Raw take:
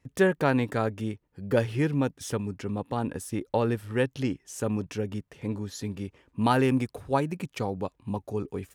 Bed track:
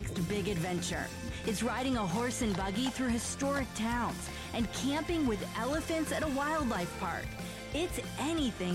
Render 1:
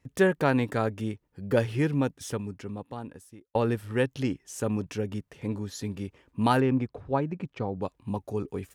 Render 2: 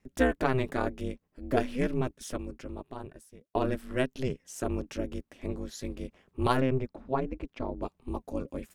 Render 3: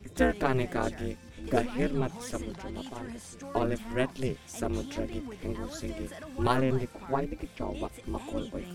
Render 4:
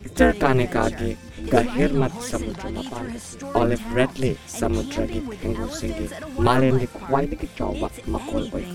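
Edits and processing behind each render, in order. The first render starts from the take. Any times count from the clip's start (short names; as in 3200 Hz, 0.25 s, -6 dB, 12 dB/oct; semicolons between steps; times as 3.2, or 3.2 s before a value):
2.01–3.55 fade out; 6.6–7.82 tape spacing loss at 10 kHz 27 dB
ring modulator 130 Hz
add bed track -10.5 dB
gain +9 dB; limiter -3 dBFS, peak gain reduction 2.5 dB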